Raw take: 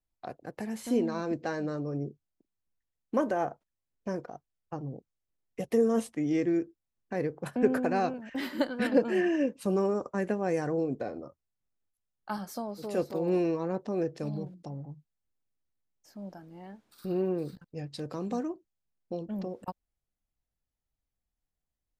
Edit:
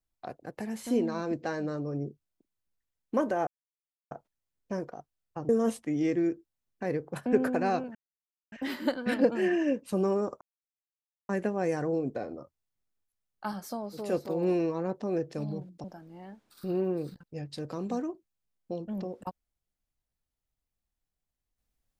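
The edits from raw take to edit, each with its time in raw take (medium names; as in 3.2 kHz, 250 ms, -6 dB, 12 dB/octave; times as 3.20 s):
3.47 s: insert silence 0.64 s
4.85–5.79 s: delete
8.25 s: insert silence 0.57 s
10.14 s: insert silence 0.88 s
14.69–16.25 s: delete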